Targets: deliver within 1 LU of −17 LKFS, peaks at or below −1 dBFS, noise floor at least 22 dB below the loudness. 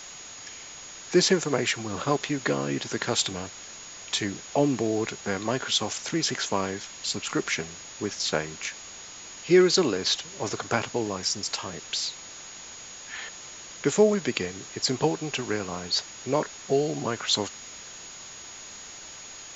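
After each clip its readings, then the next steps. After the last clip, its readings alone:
interfering tone 6,700 Hz; level of the tone −43 dBFS; background noise floor −43 dBFS; target noise floor −49 dBFS; integrated loudness −27.0 LKFS; sample peak −8.0 dBFS; target loudness −17.0 LKFS
→ notch filter 6,700 Hz, Q 30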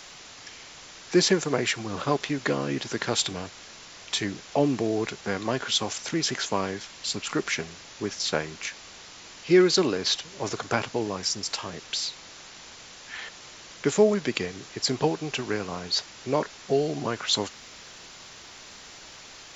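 interfering tone none found; background noise floor −46 dBFS; target noise floor −49 dBFS
→ noise reduction from a noise print 6 dB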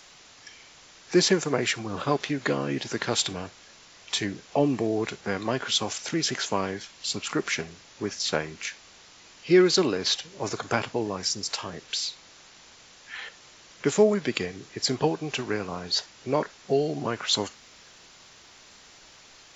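background noise floor −52 dBFS; integrated loudness −27.0 LKFS; sample peak −8.0 dBFS; target loudness −17.0 LKFS
→ level +10 dB
brickwall limiter −1 dBFS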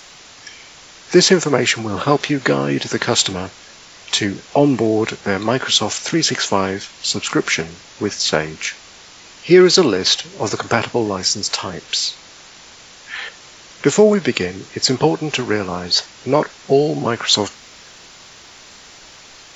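integrated loudness −17.0 LKFS; sample peak −1.0 dBFS; background noise floor −42 dBFS

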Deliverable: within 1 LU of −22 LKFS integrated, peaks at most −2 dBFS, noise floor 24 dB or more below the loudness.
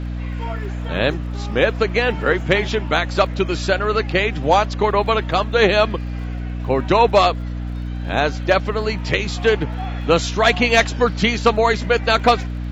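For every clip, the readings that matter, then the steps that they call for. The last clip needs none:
crackle rate 40 per second; mains hum 60 Hz; hum harmonics up to 300 Hz; level of the hum −23 dBFS; integrated loudness −18.5 LKFS; sample peak −3.5 dBFS; target loudness −22.0 LKFS
→ click removal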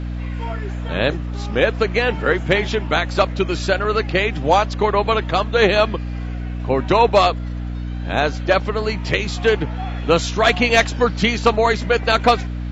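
crackle rate 0.079 per second; mains hum 60 Hz; hum harmonics up to 300 Hz; level of the hum −23 dBFS
→ hum removal 60 Hz, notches 5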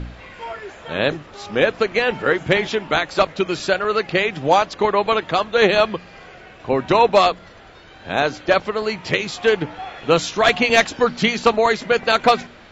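mains hum none found; integrated loudness −18.5 LKFS; sample peak −2.5 dBFS; target loudness −22.0 LKFS
→ level −3.5 dB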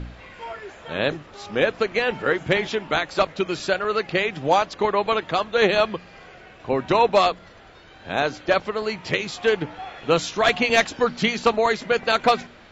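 integrated loudness −22.0 LKFS; sample peak −6.0 dBFS; background noise floor −47 dBFS

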